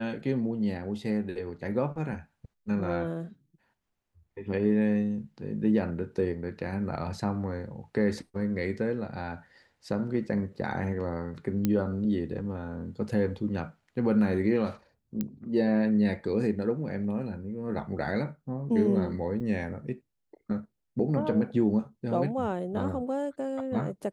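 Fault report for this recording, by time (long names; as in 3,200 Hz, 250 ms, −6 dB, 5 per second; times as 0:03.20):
0:11.65: click −13 dBFS
0:15.21: click −17 dBFS
0:19.40: drop-out 3.7 ms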